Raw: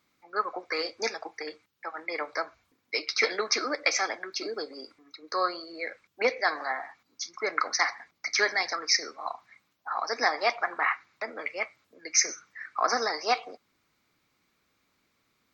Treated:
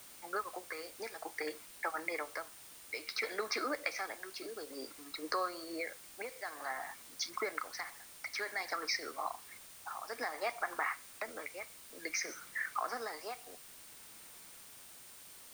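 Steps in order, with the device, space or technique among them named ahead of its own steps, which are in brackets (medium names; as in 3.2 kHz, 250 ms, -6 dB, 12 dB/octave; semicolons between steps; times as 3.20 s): medium wave at night (band-pass 130–3800 Hz; compression, threshold -40 dBFS, peak gain reduction 19 dB; tremolo 0.56 Hz, depth 66%; whistle 9 kHz -66 dBFS; white noise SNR 13 dB); trim +6.5 dB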